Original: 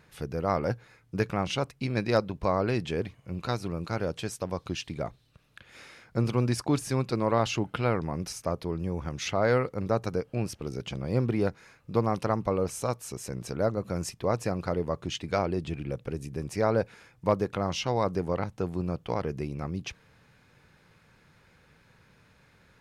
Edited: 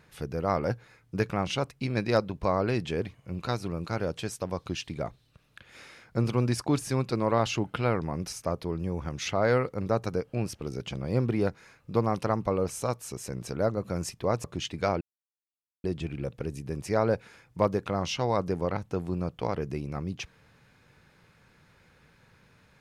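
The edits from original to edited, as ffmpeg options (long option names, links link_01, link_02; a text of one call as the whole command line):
ffmpeg -i in.wav -filter_complex "[0:a]asplit=3[link_01][link_02][link_03];[link_01]atrim=end=14.442[link_04];[link_02]atrim=start=14.938:end=15.51,asetpts=PTS-STARTPTS,afade=type=out:start_time=0.568:duration=0.004:curve=hsin,apad=pad_dur=0.83[link_05];[link_03]atrim=start=15.51,asetpts=PTS-STARTPTS,afade=type=in:duration=0.004:curve=hsin[link_06];[link_05][link_06]concat=n=2:v=0:a=1[link_07];[link_04][link_07]acrossfade=duration=0.004:curve1=hsin:curve2=hsin" out.wav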